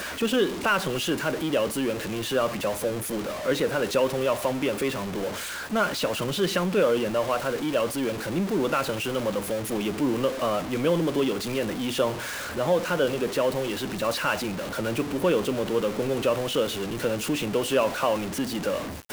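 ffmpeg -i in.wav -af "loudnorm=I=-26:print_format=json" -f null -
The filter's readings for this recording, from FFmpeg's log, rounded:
"input_i" : "-26.3",
"input_tp" : "-9.9",
"input_lra" : "0.9",
"input_thresh" : "-36.3",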